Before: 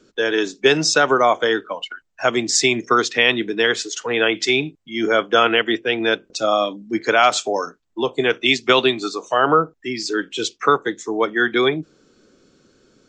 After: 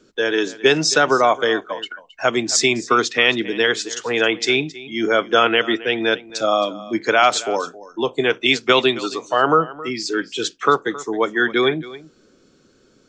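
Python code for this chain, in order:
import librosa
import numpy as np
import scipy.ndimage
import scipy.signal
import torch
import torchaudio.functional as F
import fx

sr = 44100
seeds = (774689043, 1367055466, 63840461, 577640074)

y = x + 10.0 ** (-18.0 / 20.0) * np.pad(x, (int(269 * sr / 1000.0), 0))[:len(x)]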